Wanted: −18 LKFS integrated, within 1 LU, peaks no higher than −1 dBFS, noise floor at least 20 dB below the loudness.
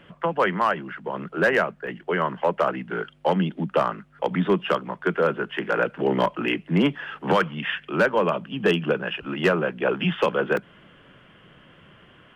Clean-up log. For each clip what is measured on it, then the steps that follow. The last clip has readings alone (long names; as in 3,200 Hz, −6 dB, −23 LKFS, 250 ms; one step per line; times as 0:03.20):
share of clipped samples 0.3%; peaks flattened at −12.0 dBFS; number of dropouts 2; longest dropout 2.4 ms; integrated loudness −24.5 LKFS; sample peak −12.0 dBFS; target loudness −18.0 LKFS
→ clipped peaks rebuilt −12 dBFS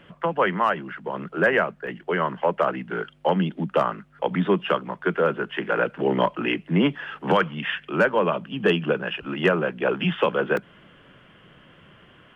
share of clipped samples 0.0%; number of dropouts 2; longest dropout 2.4 ms
→ repair the gap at 0:01.87/0:10.57, 2.4 ms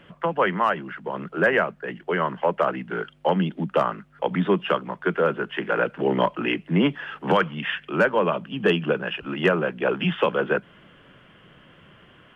number of dropouts 0; integrated loudness −24.0 LKFS; sample peak −8.0 dBFS; target loudness −18.0 LKFS
→ level +6 dB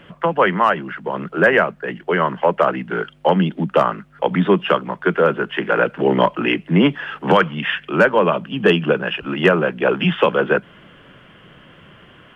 integrated loudness −18.0 LKFS; sample peak −2.0 dBFS; background noise floor −48 dBFS